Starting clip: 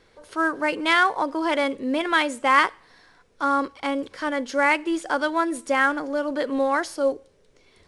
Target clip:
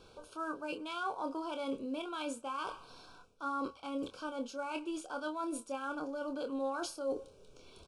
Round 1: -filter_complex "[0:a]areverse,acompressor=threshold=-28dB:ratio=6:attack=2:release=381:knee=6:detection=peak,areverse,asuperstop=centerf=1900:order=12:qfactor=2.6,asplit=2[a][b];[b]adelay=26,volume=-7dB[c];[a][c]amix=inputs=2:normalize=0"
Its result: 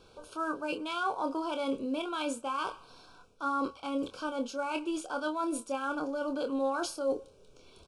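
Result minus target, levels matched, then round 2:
compressor: peak gain reduction -5.5 dB
-filter_complex "[0:a]areverse,acompressor=threshold=-34.5dB:ratio=6:attack=2:release=381:knee=6:detection=peak,areverse,asuperstop=centerf=1900:order=12:qfactor=2.6,asplit=2[a][b];[b]adelay=26,volume=-7dB[c];[a][c]amix=inputs=2:normalize=0"

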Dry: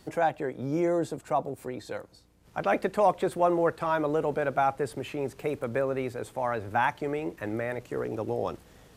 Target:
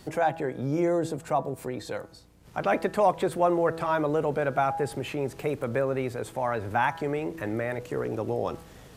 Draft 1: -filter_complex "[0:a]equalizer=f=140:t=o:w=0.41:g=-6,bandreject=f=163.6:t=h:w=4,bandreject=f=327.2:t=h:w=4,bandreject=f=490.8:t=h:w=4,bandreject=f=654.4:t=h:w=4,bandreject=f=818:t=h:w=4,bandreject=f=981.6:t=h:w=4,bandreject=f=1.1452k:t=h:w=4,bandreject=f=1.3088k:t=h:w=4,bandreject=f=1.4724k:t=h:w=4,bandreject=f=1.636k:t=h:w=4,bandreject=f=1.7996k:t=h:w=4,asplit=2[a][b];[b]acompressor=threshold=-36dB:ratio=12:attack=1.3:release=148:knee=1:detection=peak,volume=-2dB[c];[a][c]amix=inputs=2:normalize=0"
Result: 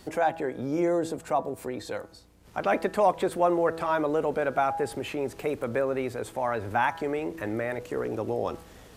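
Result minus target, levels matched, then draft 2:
125 Hz band -5.0 dB
-filter_complex "[0:a]equalizer=f=140:t=o:w=0.41:g=3.5,bandreject=f=163.6:t=h:w=4,bandreject=f=327.2:t=h:w=4,bandreject=f=490.8:t=h:w=4,bandreject=f=654.4:t=h:w=4,bandreject=f=818:t=h:w=4,bandreject=f=981.6:t=h:w=4,bandreject=f=1.1452k:t=h:w=4,bandreject=f=1.3088k:t=h:w=4,bandreject=f=1.4724k:t=h:w=4,bandreject=f=1.636k:t=h:w=4,bandreject=f=1.7996k:t=h:w=4,asplit=2[a][b];[b]acompressor=threshold=-36dB:ratio=12:attack=1.3:release=148:knee=1:detection=peak,volume=-2dB[c];[a][c]amix=inputs=2:normalize=0"

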